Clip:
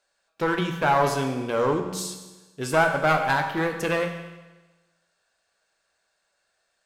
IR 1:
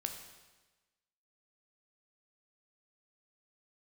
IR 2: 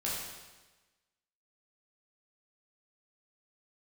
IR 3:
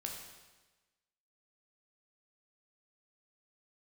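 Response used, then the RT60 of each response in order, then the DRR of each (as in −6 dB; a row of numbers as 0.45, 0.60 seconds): 1; 1.2, 1.2, 1.2 seconds; 4.5, −7.0, 0.0 decibels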